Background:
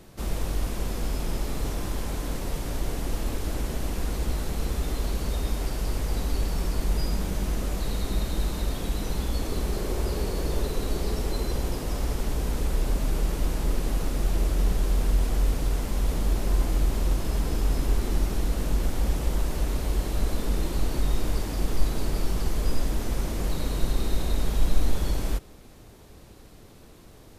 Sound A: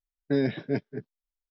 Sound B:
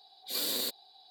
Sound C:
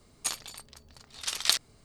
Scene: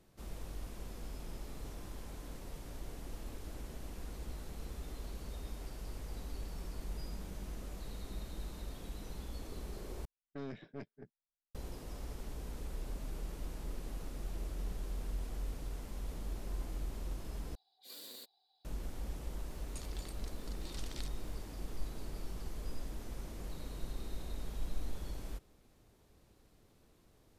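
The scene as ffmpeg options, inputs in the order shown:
-filter_complex "[0:a]volume=-16.5dB[a];[1:a]aeval=exprs='(tanh(17.8*val(0)+0.7)-tanh(0.7))/17.8':c=same[b];[3:a]acompressor=threshold=-44dB:ratio=6:attack=3.2:release=140:knee=1:detection=peak[c];[a]asplit=3[d][e][f];[d]atrim=end=10.054[g];[b]atrim=end=1.5,asetpts=PTS-STARTPTS,volume=-13.5dB[h];[e]atrim=start=11.546:end=17.554[i];[2:a]atrim=end=1.1,asetpts=PTS-STARTPTS,volume=-18dB[j];[f]atrim=start=18.646[k];[c]atrim=end=1.84,asetpts=PTS-STARTPTS,volume=-4dB,afade=t=in:d=0.004:c=hsin,afade=t=out:st=1.836:d=0.004:c=hsin,adelay=19510[l];[g][h]acrossfade=d=0.004:c1=hsin:c2=hsin[m];[m][i]acrossfade=d=0.004:c1=hsin:c2=hsin[n];[n][j]acrossfade=d=0.004:c1=hsin:c2=hsin[o];[o][k]acrossfade=d=0.004:c1=hsin:c2=hsin[p];[p][l]amix=inputs=2:normalize=0"

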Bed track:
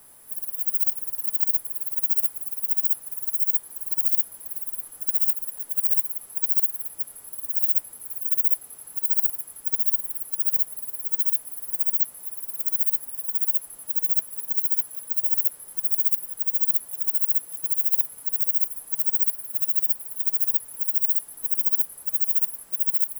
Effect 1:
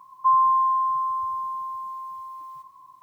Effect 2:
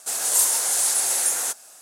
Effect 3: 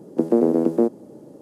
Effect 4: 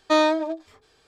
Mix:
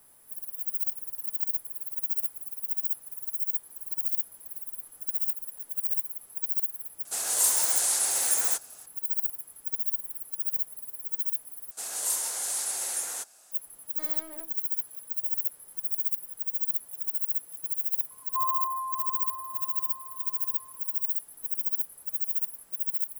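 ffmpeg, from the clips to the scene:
-filter_complex "[2:a]asplit=2[a][b];[0:a]volume=-7dB[c];[4:a]aeval=exprs='(tanh(44.7*val(0)+0.45)-tanh(0.45))/44.7':c=same[d];[c]asplit=2[e][f];[e]atrim=end=11.714[g];[b]atrim=end=1.81,asetpts=PTS-STARTPTS,volume=-9.5dB[h];[f]atrim=start=13.516[i];[a]atrim=end=1.81,asetpts=PTS-STARTPTS,volume=-4.5dB,afade=t=in:d=0.004:c=hsin,afade=t=out:st=1.806:d=0.004:c=hsin,adelay=7050[j];[d]atrim=end=1.07,asetpts=PTS-STARTPTS,volume=-11.5dB,afade=t=in:d=0.004:c=hsin,afade=t=out:st=1.066:d=0.004:c=hsin,adelay=13890[k];[1:a]atrim=end=3.02,asetpts=PTS-STARTPTS,volume=-11.5dB,afade=t=in:d=0.004:c=hsin,afade=t=out:st=3.016:d=0.004:c=hsin,adelay=18100[l];[g][h]acrossfade=d=0.004:c1=hsin:c2=hsin[m];[m][i]acrossfade=d=0.004:c1=hsin:c2=hsin[n];[n][j][k][l]amix=inputs=4:normalize=0"

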